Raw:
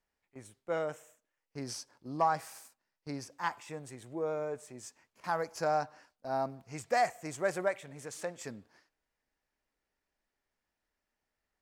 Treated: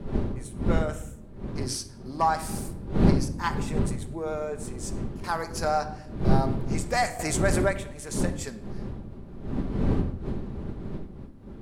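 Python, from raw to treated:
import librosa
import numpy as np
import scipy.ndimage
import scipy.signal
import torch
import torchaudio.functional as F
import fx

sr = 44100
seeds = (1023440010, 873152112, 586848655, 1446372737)

y = fx.dmg_wind(x, sr, seeds[0], corner_hz=220.0, level_db=-34.0)
y = fx.graphic_eq_15(y, sr, hz=(160, 630, 4000, 10000), db=(-4, -3, 5, 9))
y = fx.room_shoebox(y, sr, seeds[1], volume_m3=2700.0, walls='furnished', distance_m=1.2)
y = fx.env_flatten(y, sr, amount_pct=50, at=(7.19, 7.67))
y = y * librosa.db_to_amplitude(4.5)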